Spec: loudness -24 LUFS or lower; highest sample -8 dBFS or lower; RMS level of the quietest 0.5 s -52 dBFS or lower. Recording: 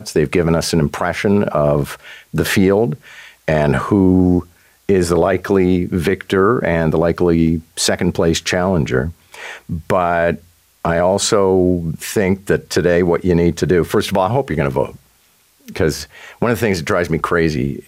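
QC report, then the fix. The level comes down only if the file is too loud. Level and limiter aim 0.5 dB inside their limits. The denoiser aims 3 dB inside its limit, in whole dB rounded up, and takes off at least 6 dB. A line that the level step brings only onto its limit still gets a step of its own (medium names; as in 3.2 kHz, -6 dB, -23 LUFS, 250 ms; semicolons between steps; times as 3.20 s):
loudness -16.0 LUFS: fail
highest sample -3.0 dBFS: fail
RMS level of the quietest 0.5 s -55 dBFS: pass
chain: trim -8.5 dB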